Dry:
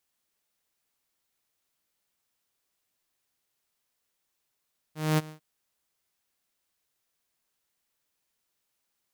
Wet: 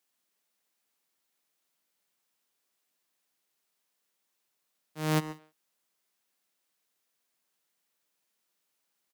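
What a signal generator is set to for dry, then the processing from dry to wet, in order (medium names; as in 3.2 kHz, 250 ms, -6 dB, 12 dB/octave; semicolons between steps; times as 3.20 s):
ADSR saw 155 Hz, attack 229 ms, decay 27 ms, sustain -20.5 dB, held 0.34 s, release 107 ms -17.5 dBFS
high-pass 150 Hz 24 dB/octave; speakerphone echo 130 ms, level -11 dB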